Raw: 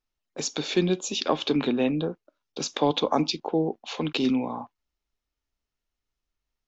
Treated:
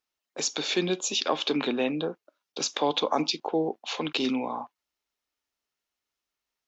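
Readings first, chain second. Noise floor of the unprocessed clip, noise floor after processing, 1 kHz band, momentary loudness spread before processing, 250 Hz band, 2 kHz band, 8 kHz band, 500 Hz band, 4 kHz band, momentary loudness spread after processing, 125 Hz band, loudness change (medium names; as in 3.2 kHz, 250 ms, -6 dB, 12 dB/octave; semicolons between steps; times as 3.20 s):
under -85 dBFS, under -85 dBFS, -0.5 dB, 11 LU, -4.0 dB, +1.5 dB, no reading, -2.0 dB, +1.5 dB, 9 LU, -8.0 dB, -1.5 dB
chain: high-pass 530 Hz 6 dB/octave; in parallel at -1 dB: peak limiter -20.5 dBFS, peak gain reduction 11 dB; on the sum: trim -2.5 dB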